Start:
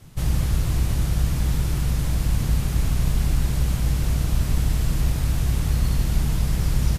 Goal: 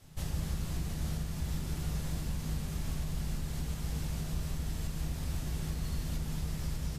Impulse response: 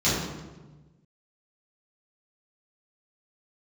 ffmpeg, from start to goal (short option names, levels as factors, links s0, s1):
-filter_complex "[0:a]equalizer=f=120:t=o:w=2.9:g=-7,alimiter=limit=0.1:level=0:latency=1:release=422,asplit=2[s0][s1];[1:a]atrim=start_sample=2205,asetrate=52920,aresample=44100[s2];[s1][s2]afir=irnorm=-1:irlink=0,volume=0.133[s3];[s0][s3]amix=inputs=2:normalize=0,volume=0.398"